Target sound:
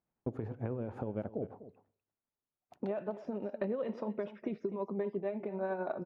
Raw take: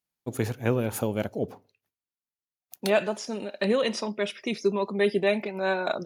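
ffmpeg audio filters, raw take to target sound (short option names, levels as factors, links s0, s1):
-filter_complex "[0:a]lowpass=1000,alimiter=limit=0.133:level=0:latency=1:release=328,acompressor=threshold=0.00501:ratio=3,tremolo=f=11:d=0.4,asplit=2[s0][s1];[s1]aecho=0:1:249:0.178[s2];[s0][s2]amix=inputs=2:normalize=0,volume=2.82"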